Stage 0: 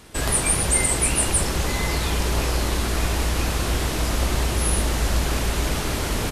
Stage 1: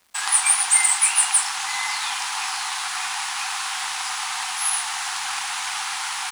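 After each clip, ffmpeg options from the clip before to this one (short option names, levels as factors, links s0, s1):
-af "afftfilt=real='re*between(b*sr/4096,730,11000)':imag='im*between(b*sr/4096,730,11000)':win_size=4096:overlap=0.75,aeval=exprs='0.398*(cos(1*acos(clip(val(0)/0.398,-1,1)))-cos(1*PI/2))+0.00631*(cos(7*acos(clip(val(0)/0.398,-1,1)))-cos(7*PI/2))':c=same,aeval=exprs='sgn(val(0))*max(abs(val(0))-0.00398,0)':c=same,volume=1.68"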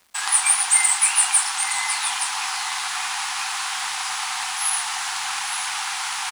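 -af "areverse,acompressor=mode=upward:threshold=0.0562:ratio=2.5,areverse,aecho=1:1:868:0.335"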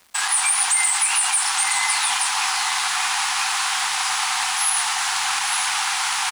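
-af "alimiter=limit=0.2:level=0:latency=1:release=47,volume=1.68"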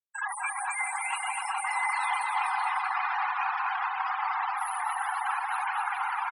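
-filter_complex "[0:a]afftfilt=real='re*gte(hypot(re,im),0.158)':imag='im*gte(hypot(re,im),0.158)':win_size=1024:overlap=0.75,acrossover=split=310 2300:gain=0.0631 1 0.1[s0][s1][s2];[s0][s1][s2]amix=inputs=3:normalize=0,asplit=2[s3][s4];[s4]aecho=0:1:250|425|547.5|633.2|693.3:0.631|0.398|0.251|0.158|0.1[s5];[s3][s5]amix=inputs=2:normalize=0,volume=0.794"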